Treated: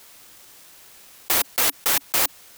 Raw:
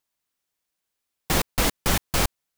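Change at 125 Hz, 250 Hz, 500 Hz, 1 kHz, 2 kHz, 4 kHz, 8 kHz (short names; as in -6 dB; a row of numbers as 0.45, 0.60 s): -17.0, -10.0, -3.5, -0.5, +1.5, +2.5, +4.5 dB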